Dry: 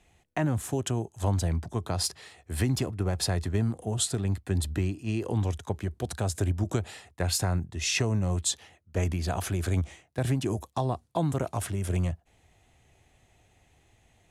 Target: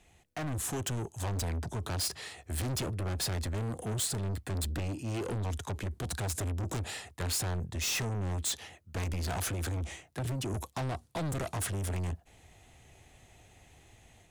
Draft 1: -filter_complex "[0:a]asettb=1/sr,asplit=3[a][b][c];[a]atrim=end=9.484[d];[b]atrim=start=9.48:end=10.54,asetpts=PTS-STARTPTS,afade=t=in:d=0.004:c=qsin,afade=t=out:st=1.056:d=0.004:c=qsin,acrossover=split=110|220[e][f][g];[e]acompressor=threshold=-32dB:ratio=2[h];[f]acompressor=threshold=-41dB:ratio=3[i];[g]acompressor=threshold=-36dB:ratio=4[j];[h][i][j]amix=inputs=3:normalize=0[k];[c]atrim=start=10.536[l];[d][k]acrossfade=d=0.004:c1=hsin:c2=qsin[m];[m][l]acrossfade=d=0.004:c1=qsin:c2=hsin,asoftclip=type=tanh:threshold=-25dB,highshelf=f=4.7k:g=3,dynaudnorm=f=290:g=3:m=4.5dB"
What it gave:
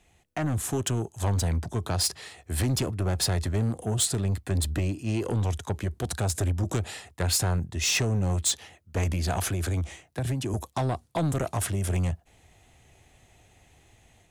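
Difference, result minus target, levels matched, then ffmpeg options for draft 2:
soft clip: distortion -7 dB
-filter_complex "[0:a]asettb=1/sr,asplit=3[a][b][c];[a]atrim=end=9.484[d];[b]atrim=start=9.48:end=10.54,asetpts=PTS-STARTPTS,afade=t=in:d=0.004:c=qsin,afade=t=out:st=1.056:d=0.004:c=qsin,acrossover=split=110|220[e][f][g];[e]acompressor=threshold=-32dB:ratio=2[h];[f]acompressor=threshold=-41dB:ratio=3[i];[g]acompressor=threshold=-36dB:ratio=4[j];[h][i][j]amix=inputs=3:normalize=0[k];[c]atrim=start=10.536[l];[d][k]acrossfade=d=0.004:c1=hsin:c2=qsin[m];[m][l]acrossfade=d=0.004:c1=qsin:c2=hsin,asoftclip=type=tanh:threshold=-36dB,highshelf=f=4.7k:g=3,dynaudnorm=f=290:g=3:m=4.5dB"

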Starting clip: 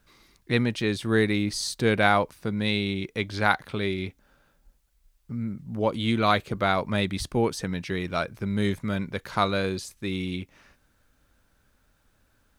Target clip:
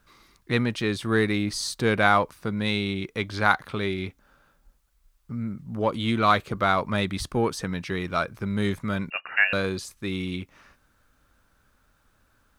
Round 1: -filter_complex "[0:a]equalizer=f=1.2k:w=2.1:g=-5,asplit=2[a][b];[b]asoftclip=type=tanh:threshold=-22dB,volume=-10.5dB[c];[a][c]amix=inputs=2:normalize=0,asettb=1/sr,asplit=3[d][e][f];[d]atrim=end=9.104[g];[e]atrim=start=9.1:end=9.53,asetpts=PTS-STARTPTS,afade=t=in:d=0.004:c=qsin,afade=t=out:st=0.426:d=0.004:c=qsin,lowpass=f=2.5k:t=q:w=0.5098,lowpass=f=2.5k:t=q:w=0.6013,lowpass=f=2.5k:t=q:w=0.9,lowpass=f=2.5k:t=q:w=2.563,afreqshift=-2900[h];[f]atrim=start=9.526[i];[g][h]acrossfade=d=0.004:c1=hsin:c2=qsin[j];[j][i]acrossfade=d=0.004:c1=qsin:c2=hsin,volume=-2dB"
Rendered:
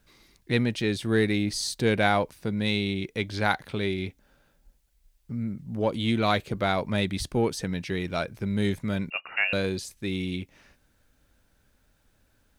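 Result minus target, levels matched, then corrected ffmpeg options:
1000 Hz band -3.5 dB
-filter_complex "[0:a]equalizer=f=1.2k:w=2.1:g=6,asplit=2[a][b];[b]asoftclip=type=tanh:threshold=-22dB,volume=-10.5dB[c];[a][c]amix=inputs=2:normalize=0,asettb=1/sr,asplit=3[d][e][f];[d]atrim=end=9.104[g];[e]atrim=start=9.1:end=9.53,asetpts=PTS-STARTPTS,afade=t=in:d=0.004:c=qsin,afade=t=out:st=0.426:d=0.004:c=qsin,lowpass=f=2.5k:t=q:w=0.5098,lowpass=f=2.5k:t=q:w=0.6013,lowpass=f=2.5k:t=q:w=0.9,lowpass=f=2.5k:t=q:w=2.563,afreqshift=-2900[h];[f]atrim=start=9.526[i];[g][h]acrossfade=d=0.004:c1=hsin:c2=qsin[j];[j][i]acrossfade=d=0.004:c1=qsin:c2=hsin,volume=-2dB"

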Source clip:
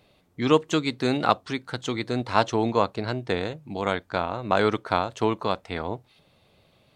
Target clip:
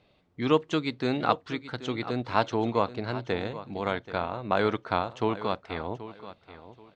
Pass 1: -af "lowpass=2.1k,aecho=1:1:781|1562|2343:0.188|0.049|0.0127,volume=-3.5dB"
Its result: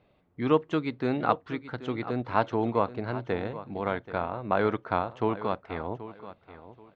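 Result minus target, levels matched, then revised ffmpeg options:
4000 Hz band -7.5 dB
-af "lowpass=4.5k,aecho=1:1:781|1562|2343:0.188|0.049|0.0127,volume=-3.5dB"

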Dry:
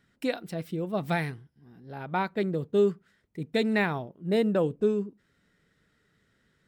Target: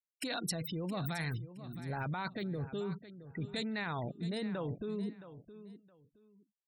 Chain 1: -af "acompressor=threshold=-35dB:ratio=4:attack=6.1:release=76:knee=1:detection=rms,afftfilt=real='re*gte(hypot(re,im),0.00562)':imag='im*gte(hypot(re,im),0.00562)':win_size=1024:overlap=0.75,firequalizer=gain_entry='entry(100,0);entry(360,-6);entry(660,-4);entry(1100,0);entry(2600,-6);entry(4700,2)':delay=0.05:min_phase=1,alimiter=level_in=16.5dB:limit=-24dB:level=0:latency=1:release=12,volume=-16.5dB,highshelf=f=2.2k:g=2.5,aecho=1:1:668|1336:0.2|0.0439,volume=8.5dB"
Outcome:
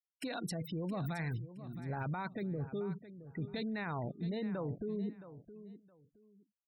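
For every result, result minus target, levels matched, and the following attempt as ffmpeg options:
compressor: peak gain reduction +14 dB; 4000 Hz band -6.5 dB
-af "afftfilt=real='re*gte(hypot(re,im),0.00562)':imag='im*gte(hypot(re,im),0.00562)':win_size=1024:overlap=0.75,firequalizer=gain_entry='entry(100,0);entry(360,-6);entry(660,-4);entry(1100,0);entry(2600,-6);entry(4700,2)':delay=0.05:min_phase=1,alimiter=level_in=16.5dB:limit=-24dB:level=0:latency=1:release=12,volume=-16.5dB,highshelf=f=2.2k:g=2.5,aecho=1:1:668|1336:0.2|0.0439,volume=8.5dB"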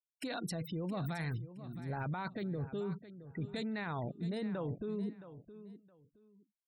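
4000 Hz band -5.5 dB
-af "afftfilt=real='re*gte(hypot(re,im),0.00562)':imag='im*gte(hypot(re,im),0.00562)':win_size=1024:overlap=0.75,firequalizer=gain_entry='entry(100,0);entry(360,-6);entry(660,-4);entry(1100,0);entry(2600,-6);entry(4700,2)':delay=0.05:min_phase=1,alimiter=level_in=16.5dB:limit=-24dB:level=0:latency=1:release=12,volume=-16.5dB,highshelf=f=2.2k:g=11,aecho=1:1:668|1336:0.2|0.0439,volume=8.5dB"

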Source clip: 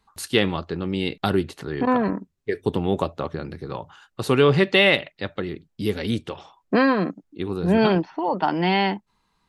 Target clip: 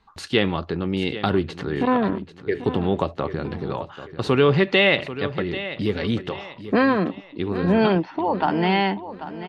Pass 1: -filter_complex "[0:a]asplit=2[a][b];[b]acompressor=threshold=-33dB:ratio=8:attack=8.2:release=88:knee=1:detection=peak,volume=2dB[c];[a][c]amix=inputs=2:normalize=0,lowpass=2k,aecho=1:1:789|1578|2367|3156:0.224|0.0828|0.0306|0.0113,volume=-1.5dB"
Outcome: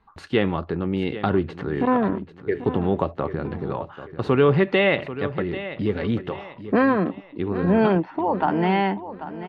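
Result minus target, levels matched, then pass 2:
4000 Hz band -7.0 dB
-filter_complex "[0:a]asplit=2[a][b];[b]acompressor=threshold=-33dB:ratio=8:attack=8.2:release=88:knee=1:detection=peak,volume=2dB[c];[a][c]amix=inputs=2:normalize=0,lowpass=4.3k,aecho=1:1:789|1578|2367|3156:0.224|0.0828|0.0306|0.0113,volume=-1.5dB"

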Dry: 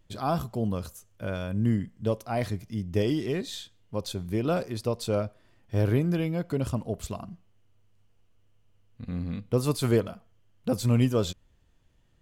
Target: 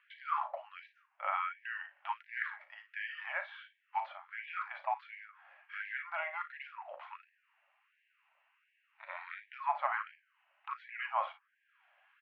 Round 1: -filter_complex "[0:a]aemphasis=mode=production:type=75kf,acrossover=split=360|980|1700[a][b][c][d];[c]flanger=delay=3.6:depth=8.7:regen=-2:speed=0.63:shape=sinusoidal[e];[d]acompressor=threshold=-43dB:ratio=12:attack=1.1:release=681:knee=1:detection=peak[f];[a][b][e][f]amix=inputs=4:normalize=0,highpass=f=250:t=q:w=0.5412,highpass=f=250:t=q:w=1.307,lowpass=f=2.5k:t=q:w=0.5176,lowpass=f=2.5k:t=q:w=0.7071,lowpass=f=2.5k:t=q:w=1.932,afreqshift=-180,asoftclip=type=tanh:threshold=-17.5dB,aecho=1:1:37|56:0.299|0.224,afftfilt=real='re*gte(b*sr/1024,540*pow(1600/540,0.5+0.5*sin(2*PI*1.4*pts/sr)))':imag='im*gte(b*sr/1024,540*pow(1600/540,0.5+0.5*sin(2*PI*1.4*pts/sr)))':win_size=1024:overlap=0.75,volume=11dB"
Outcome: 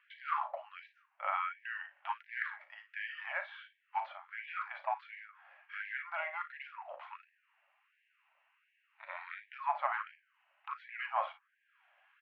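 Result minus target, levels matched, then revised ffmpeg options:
soft clip: distortion +11 dB
-filter_complex "[0:a]aemphasis=mode=production:type=75kf,acrossover=split=360|980|1700[a][b][c][d];[c]flanger=delay=3.6:depth=8.7:regen=-2:speed=0.63:shape=sinusoidal[e];[d]acompressor=threshold=-43dB:ratio=12:attack=1.1:release=681:knee=1:detection=peak[f];[a][b][e][f]amix=inputs=4:normalize=0,highpass=f=250:t=q:w=0.5412,highpass=f=250:t=q:w=1.307,lowpass=f=2.5k:t=q:w=0.5176,lowpass=f=2.5k:t=q:w=0.7071,lowpass=f=2.5k:t=q:w=1.932,afreqshift=-180,asoftclip=type=tanh:threshold=-11dB,aecho=1:1:37|56:0.299|0.224,afftfilt=real='re*gte(b*sr/1024,540*pow(1600/540,0.5+0.5*sin(2*PI*1.4*pts/sr)))':imag='im*gte(b*sr/1024,540*pow(1600/540,0.5+0.5*sin(2*PI*1.4*pts/sr)))':win_size=1024:overlap=0.75,volume=11dB"

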